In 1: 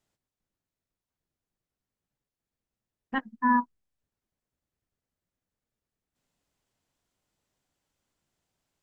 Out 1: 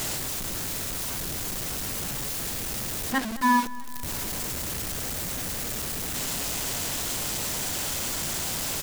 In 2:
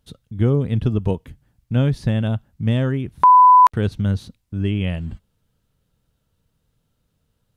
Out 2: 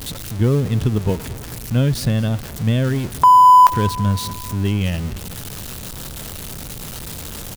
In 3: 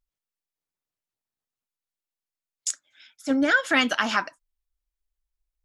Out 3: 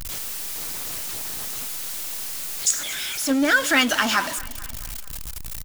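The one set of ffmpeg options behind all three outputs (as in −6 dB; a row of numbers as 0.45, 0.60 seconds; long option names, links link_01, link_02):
-af "aeval=exprs='val(0)+0.5*0.0447*sgn(val(0))':channel_layout=same,highshelf=frequency=4100:gain=7,aecho=1:1:221|442|663|884|1105:0.106|0.0625|0.0369|0.0218|0.0128"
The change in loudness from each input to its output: 0.0, +1.0, 0.0 LU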